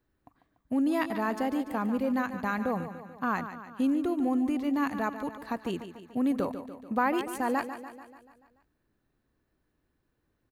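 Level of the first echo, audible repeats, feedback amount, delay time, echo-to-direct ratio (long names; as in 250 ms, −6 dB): −11.0 dB, 6, 58%, 145 ms, −9.0 dB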